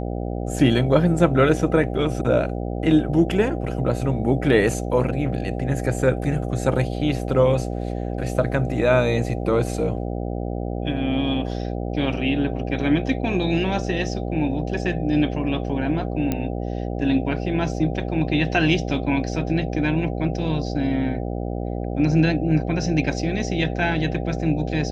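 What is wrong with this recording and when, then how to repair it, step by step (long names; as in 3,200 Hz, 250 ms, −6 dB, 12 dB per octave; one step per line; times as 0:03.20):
mains buzz 60 Hz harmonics 13 −27 dBFS
0:16.32: click −10 dBFS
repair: click removal
hum removal 60 Hz, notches 13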